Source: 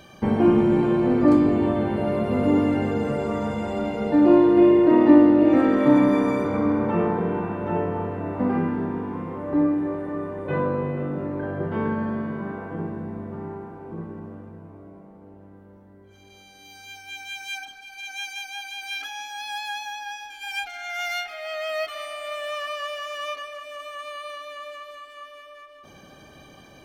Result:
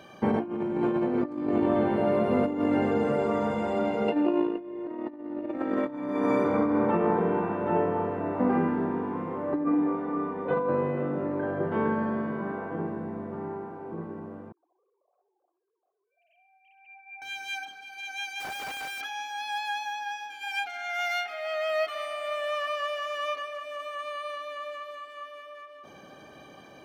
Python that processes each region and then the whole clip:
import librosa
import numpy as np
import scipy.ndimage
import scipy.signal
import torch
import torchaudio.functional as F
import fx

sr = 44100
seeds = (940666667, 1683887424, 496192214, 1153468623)

y = fx.chain(x, sr, fx.highpass(hz=130.0, slope=12),
    fx.peak_eq(hz=2700.0, db=14.5, octaves=0.2),
    fx.over_compress(threshold_db=-19.0, ratio=-0.5), at=(4.08, 4.58))
y = fx.chain(y, sr, fx.air_absorb(metres=110.0),
    fx.hum_notches(base_hz=60, count=9),
    fx.comb(ms=4.2, depth=0.84), at=(9.64, 10.69))
y = fx.chain(y, sr, fx.sine_speech(),
    fx.vowel_filter(vowel='a'),
    fx.echo_feedback(ms=65, feedback_pct=42, wet_db=-12), at=(14.52, 17.22))
y = fx.chain(y, sr, fx.resample_bad(factor=3, down='none', up='filtered'),
    fx.schmitt(flips_db=-40.0), at=(18.4, 19.01))
y = fx.highpass(y, sr, hz=320.0, slope=6)
y = fx.high_shelf(y, sr, hz=2600.0, db=-9.5)
y = fx.over_compress(y, sr, threshold_db=-25.0, ratio=-0.5)